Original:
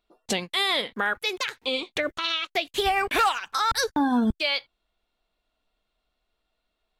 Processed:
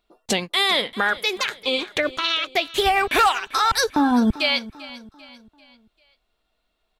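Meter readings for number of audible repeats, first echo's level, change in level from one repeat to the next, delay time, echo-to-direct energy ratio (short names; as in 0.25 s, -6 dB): 3, -18.0 dB, -7.5 dB, 0.393 s, -17.0 dB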